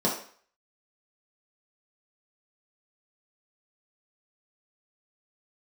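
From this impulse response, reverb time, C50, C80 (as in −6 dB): 0.50 s, 6.0 dB, 10.5 dB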